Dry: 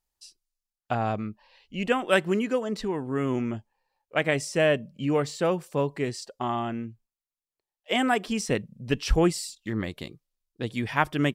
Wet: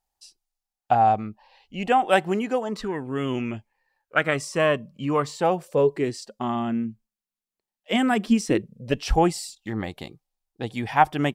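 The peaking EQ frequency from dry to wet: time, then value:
peaking EQ +14 dB 0.35 oct
2.63 s 780 Hz
3.19 s 3.3 kHz
4.49 s 1.1 kHz
5.26 s 1.1 kHz
6.33 s 210 Hz
8.24 s 210 Hz
9.13 s 790 Hz

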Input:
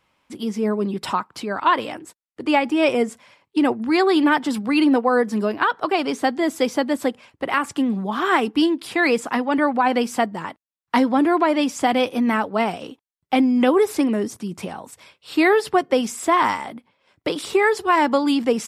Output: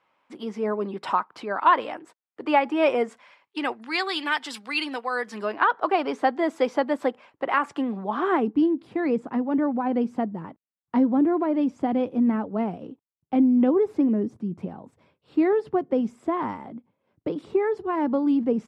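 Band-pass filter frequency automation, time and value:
band-pass filter, Q 0.64
2.93 s 900 Hz
4.09 s 3.6 kHz
5.13 s 3.6 kHz
5.69 s 810 Hz
8.05 s 810 Hz
8.55 s 170 Hz

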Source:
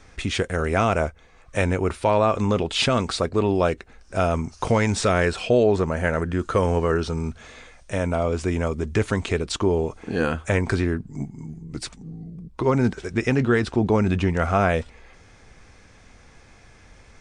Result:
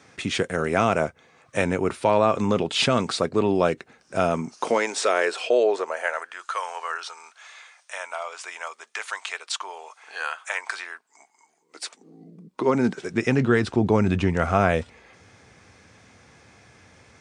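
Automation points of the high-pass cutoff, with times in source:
high-pass 24 dB/octave
4.27 s 120 Hz
4.92 s 380 Hz
5.65 s 380 Hz
6.35 s 840 Hz
11.46 s 840 Hz
12.25 s 240 Hz
13.72 s 85 Hz

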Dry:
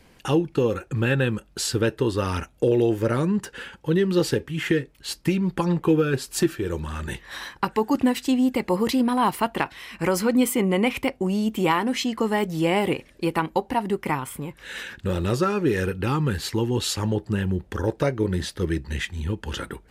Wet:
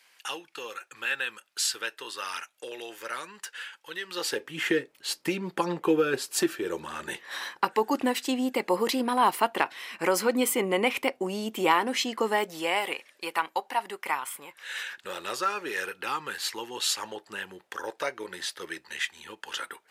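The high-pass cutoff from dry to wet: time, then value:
4.05 s 1.4 kHz
4.55 s 390 Hz
12.26 s 390 Hz
12.81 s 870 Hz

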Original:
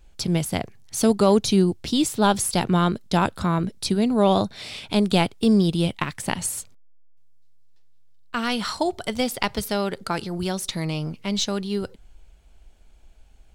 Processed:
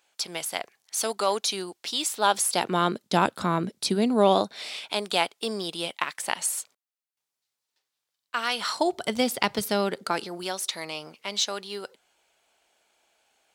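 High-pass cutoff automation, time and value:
2.08 s 770 Hz
3.08 s 230 Hz
4.18 s 230 Hz
4.89 s 620 Hz
8.54 s 620 Hz
9.06 s 170 Hz
9.77 s 170 Hz
10.59 s 600 Hz

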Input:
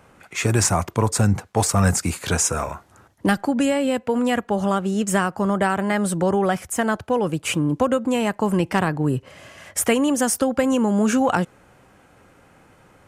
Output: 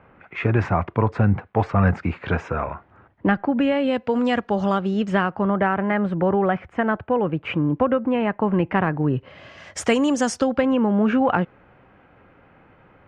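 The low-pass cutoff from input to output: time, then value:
low-pass 24 dB/octave
3.45 s 2.5 kHz
4.14 s 5.1 kHz
4.67 s 5.1 kHz
5.66 s 2.5 kHz
8.97 s 2.5 kHz
9.78 s 6.5 kHz
10.34 s 6.5 kHz
10.76 s 2.8 kHz

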